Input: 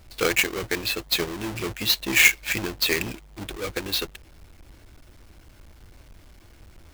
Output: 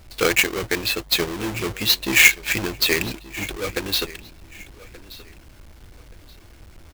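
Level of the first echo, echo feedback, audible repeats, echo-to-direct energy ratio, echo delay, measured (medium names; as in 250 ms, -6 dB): -19.0 dB, 27%, 2, -18.5 dB, 1177 ms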